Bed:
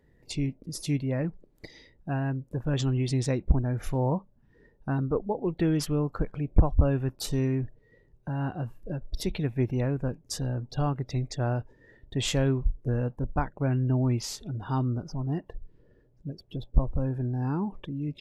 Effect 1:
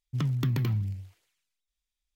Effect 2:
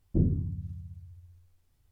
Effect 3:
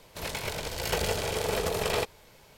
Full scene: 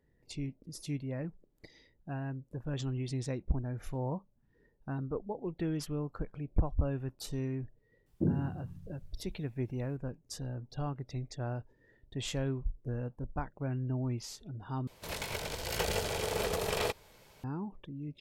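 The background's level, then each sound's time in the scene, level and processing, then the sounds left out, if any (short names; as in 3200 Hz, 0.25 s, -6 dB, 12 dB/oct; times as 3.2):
bed -9 dB
8.06 add 2 -0.5 dB + HPF 170 Hz
14.87 replace with 3 -4 dB
not used: 1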